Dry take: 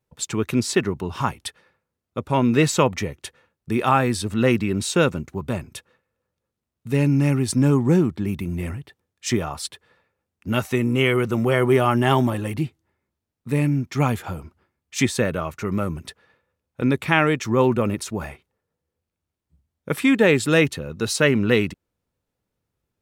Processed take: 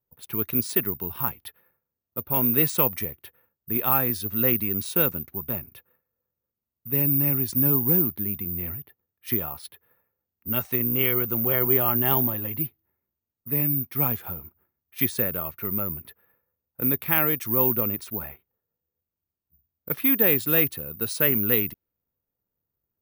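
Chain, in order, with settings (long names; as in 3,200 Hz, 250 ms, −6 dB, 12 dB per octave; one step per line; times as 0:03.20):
low-pass that shuts in the quiet parts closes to 1,600 Hz, open at −17 dBFS
bad sample-rate conversion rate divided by 3×, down filtered, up zero stuff
level −8.5 dB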